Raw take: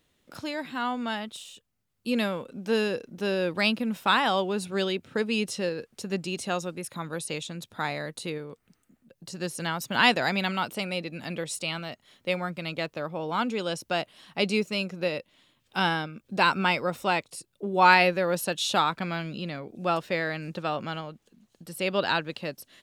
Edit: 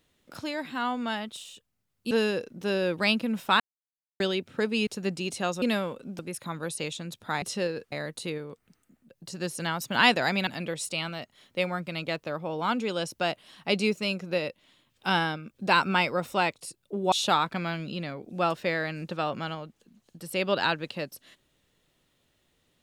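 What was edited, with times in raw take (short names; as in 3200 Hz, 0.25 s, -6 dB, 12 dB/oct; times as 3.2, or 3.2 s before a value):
2.11–2.68 move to 6.69
4.17–4.77 mute
5.44–5.94 move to 7.92
10.47–11.17 cut
17.82–18.58 cut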